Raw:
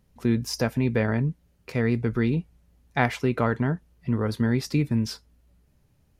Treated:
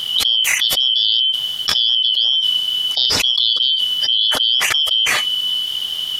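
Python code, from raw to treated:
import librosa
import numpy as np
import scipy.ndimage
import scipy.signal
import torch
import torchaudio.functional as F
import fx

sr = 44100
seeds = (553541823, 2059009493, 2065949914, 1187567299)

y = fx.band_shuffle(x, sr, order='3412')
y = fx.dynamic_eq(y, sr, hz=3400.0, q=6.4, threshold_db=-37.0, ratio=4.0, max_db=6)
y = fx.env_flatten(y, sr, amount_pct=100)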